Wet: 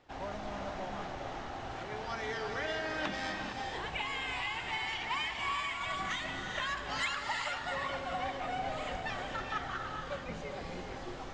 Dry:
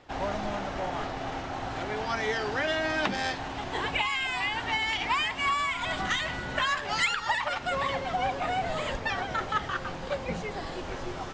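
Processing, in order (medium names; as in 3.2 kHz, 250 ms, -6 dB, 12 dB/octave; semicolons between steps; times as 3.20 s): gated-style reverb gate 480 ms rising, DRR 2.5 dB; trim -9 dB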